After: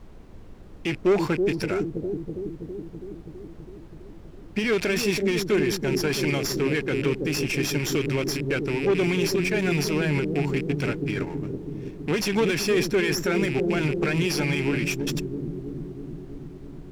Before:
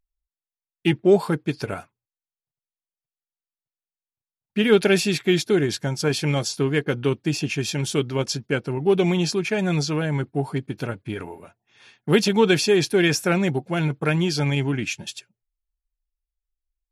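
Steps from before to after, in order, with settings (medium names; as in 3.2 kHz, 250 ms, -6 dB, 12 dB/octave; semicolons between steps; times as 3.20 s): rattle on loud lows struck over -31 dBFS, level -26 dBFS; waveshaping leveller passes 2; rippled Chebyshev low-pass 7.5 kHz, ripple 9 dB; treble shelf 3.9 kHz +8.5 dB; added noise brown -41 dBFS; bucket-brigade echo 326 ms, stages 1024, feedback 72%, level -5 dB; peak limiter -14 dBFS, peak gain reduction 11 dB; peaking EQ 340 Hz +5.5 dB 1.9 oct; sliding maximum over 3 samples; trim -3.5 dB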